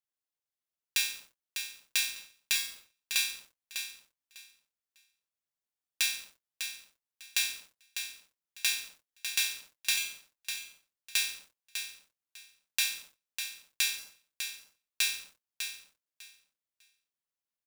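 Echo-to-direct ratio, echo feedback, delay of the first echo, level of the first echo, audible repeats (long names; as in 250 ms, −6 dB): −8.0 dB, 19%, 600 ms, −8.0 dB, 2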